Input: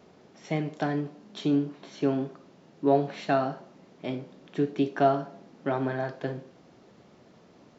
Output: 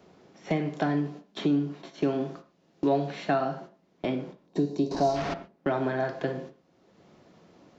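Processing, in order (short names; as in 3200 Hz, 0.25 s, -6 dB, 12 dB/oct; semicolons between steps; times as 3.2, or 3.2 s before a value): 4.91–5.34 delta modulation 32 kbps, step -25 dBFS; gate -45 dBFS, range -22 dB; 4.46–5.16 spectral gain 1100–3700 Hz -14 dB; reverb, pre-delay 3 ms, DRR 10 dB; three-band squash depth 70%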